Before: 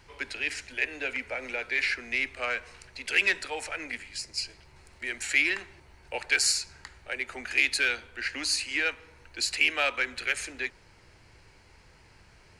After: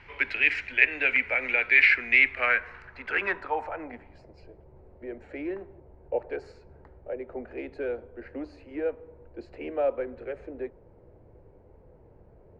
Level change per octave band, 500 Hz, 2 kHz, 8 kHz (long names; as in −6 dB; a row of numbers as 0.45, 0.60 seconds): +7.0 dB, +2.5 dB, below −30 dB